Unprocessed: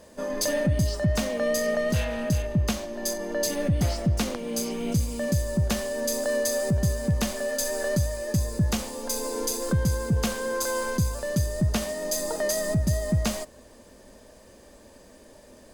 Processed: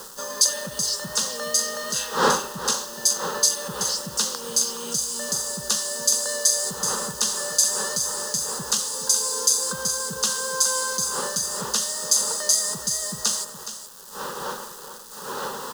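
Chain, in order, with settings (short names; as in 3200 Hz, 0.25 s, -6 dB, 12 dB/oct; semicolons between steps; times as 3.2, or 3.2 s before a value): wind noise 590 Hz -29 dBFS; weighting filter ITU-R 468; in parallel at +1.5 dB: compressor, threshold -35 dBFS, peak gain reduction 21 dB; on the sum: bit-crush 6-bit; fixed phaser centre 450 Hz, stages 8; echo 0.419 s -12 dB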